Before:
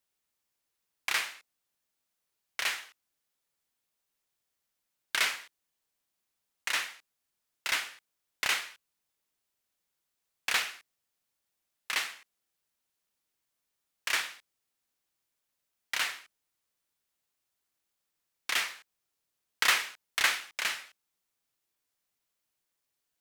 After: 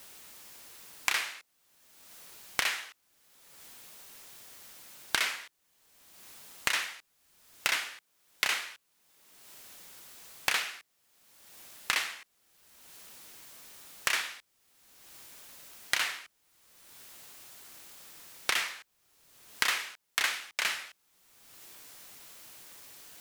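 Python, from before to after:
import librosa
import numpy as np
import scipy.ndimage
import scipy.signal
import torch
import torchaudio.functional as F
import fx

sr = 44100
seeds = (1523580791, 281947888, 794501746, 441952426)

y = fx.band_squash(x, sr, depth_pct=100)
y = y * 10.0 ** (2.0 / 20.0)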